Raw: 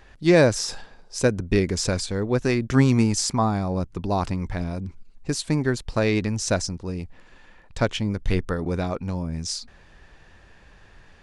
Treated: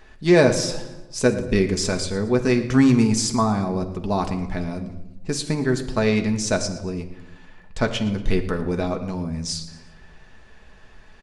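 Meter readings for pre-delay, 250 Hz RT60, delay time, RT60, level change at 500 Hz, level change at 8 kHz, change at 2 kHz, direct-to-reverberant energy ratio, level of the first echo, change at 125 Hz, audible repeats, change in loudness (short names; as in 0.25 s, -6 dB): 5 ms, 1.4 s, 0.116 s, 1.0 s, +2.0 dB, +1.0 dB, +1.5 dB, 4.0 dB, -17.5 dB, -0.5 dB, 3, +2.0 dB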